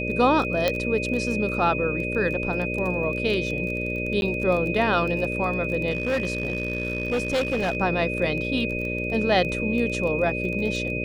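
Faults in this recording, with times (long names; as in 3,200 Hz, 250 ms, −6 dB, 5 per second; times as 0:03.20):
mains buzz 60 Hz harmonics 10 −30 dBFS
surface crackle 18 per second −29 dBFS
whistle 2,500 Hz −29 dBFS
0:00.68: click −8 dBFS
0:04.21–0:04.22: drop-out 11 ms
0:05.90–0:07.77: clipping −20 dBFS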